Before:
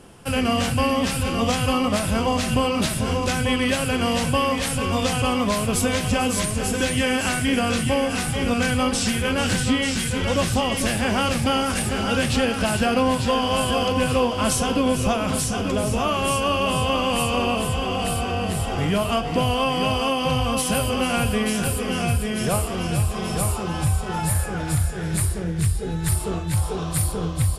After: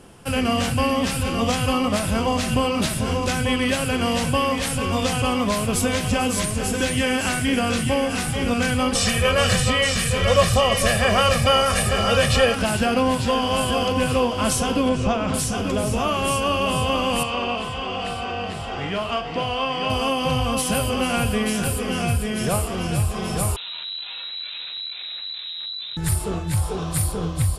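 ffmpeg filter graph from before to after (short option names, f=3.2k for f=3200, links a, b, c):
-filter_complex "[0:a]asettb=1/sr,asplit=3[a][b][c];[a]atrim=end=8.954[d];[b]atrim=start=8.95:end=12.55,asetpts=PTS-STARTPTS,afade=t=in:d=0.004:c=qsin,afade=t=out:st=3.596:d=0.004:c=qsin,equalizer=f=1.3k:t=o:w=2.6:g=3.5,aecho=1:1:1.7:0.85,atrim=end_sample=158760[e];[c]atrim=start=12.546[f];[d][e]acrossfade=d=0.004:c1=hsin:c2=qsin[g];[g][f]acrossfade=d=0.004:c1=qsin:c2=hsin,asettb=1/sr,asplit=3[h][i][j];[h]atrim=end=14.894[k];[i]atrim=start=14.89:end=15.34,asetpts=PTS-STARTPTS,afade=t=in:d=0.004:c=qsin,afade=t=out:st=0.446:d=0.004:c=qsin,lowpass=f=8.4k:w=0.5412,lowpass=f=8.4k:w=1.3066,aemphasis=mode=reproduction:type=cd[l];[j]atrim=start=15.336[m];[k][l]acrossfade=d=0.004:c1=hsin:c2=qsin[n];[n][m]acrossfade=d=0.004:c1=qsin:c2=hsin,asettb=1/sr,asplit=3[o][p][q];[o]atrim=end=17.234[r];[p]atrim=start=17.23:end=19.9,asetpts=PTS-STARTPTS,afade=t=in:d=0.004:c=qsin,afade=t=out:st=2.666:d=0.004:c=qsin,lowpass=4.5k,lowshelf=f=400:g=-10,asplit=2[s][t];[t]adelay=42,volume=-10.5dB[u];[s][u]amix=inputs=2:normalize=0,atrim=end_sample=117747[v];[q]atrim=start=19.896[w];[r][v]acrossfade=d=0.004:c1=hsin:c2=qsin[x];[x][w]acrossfade=d=0.004:c1=qsin:c2=hsin,asettb=1/sr,asplit=3[y][z][aa];[y]atrim=end=23.564[ab];[z]atrim=start=23.56:end=25.97,asetpts=PTS-STARTPTS,afade=t=in:d=0.004:c=qsin,afade=t=out:st=2.406:d=0.004:c=qsin,asuperstop=centerf=900:order=8:qfactor=4,aeval=exprs='(tanh(35.5*val(0)+0.65)-tanh(0.65))/35.5':c=same,lowpass=f=3.4k:t=q:w=0.5098,lowpass=f=3.4k:t=q:w=0.6013,lowpass=f=3.4k:t=q:w=0.9,lowpass=f=3.4k:t=q:w=2.563,afreqshift=-4000[ac];[aa]atrim=start=25.966[ad];[ab][ac]acrossfade=d=0.004:c1=hsin:c2=qsin[ae];[ae][ad]acrossfade=d=0.004:c1=qsin:c2=hsin"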